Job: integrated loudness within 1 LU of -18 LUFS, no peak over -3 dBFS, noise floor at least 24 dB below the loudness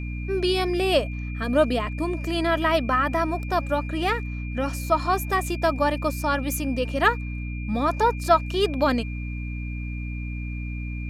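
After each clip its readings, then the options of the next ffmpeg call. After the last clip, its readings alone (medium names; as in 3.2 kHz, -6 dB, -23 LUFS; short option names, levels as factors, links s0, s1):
hum 60 Hz; highest harmonic 300 Hz; hum level -28 dBFS; steady tone 2.4 kHz; tone level -40 dBFS; loudness -25.0 LUFS; peak level -4.5 dBFS; loudness target -18.0 LUFS
-> -af "bandreject=f=60:t=h:w=4,bandreject=f=120:t=h:w=4,bandreject=f=180:t=h:w=4,bandreject=f=240:t=h:w=4,bandreject=f=300:t=h:w=4"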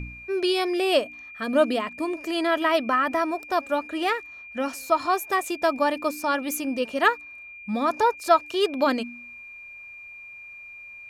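hum not found; steady tone 2.4 kHz; tone level -40 dBFS
-> -af "bandreject=f=2400:w=30"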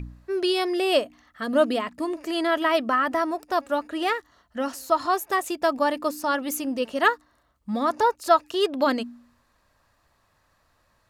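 steady tone not found; loudness -24.5 LUFS; peak level -5.0 dBFS; loudness target -18.0 LUFS
-> -af "volume=2.11,alimiter=limit=0.708:level=0:latency=1"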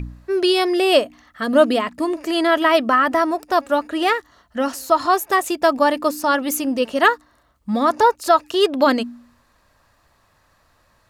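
loudness -18.5 LUFS; peak level -3.0 dBFS; noise floor -60 dBFS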